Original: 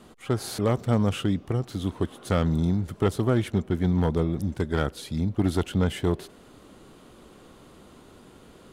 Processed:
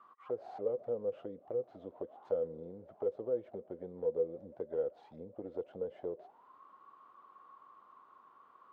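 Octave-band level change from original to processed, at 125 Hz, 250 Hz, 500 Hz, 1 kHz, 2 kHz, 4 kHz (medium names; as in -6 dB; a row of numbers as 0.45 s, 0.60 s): -32.0 dB, -23.5 dB, -6.0 dB, -16.5 dB, under -25 dB, under -30 dB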